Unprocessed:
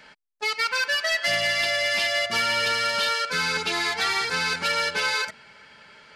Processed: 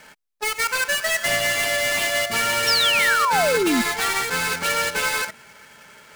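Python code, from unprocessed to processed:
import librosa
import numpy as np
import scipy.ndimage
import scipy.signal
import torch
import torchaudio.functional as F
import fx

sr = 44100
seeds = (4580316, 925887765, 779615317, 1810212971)

y = fx.dead_time(x, sr, dead_ms=0.093)
y = fx.spec_paint(y, sr, seeds[0], shape='fall', start_s=2.67, length_s=1.15, low_hz=220.0, high_hz=5700.0, level_db=-24.0)
y = F.gain(torch.from_numpy(y), 4.0).numpy()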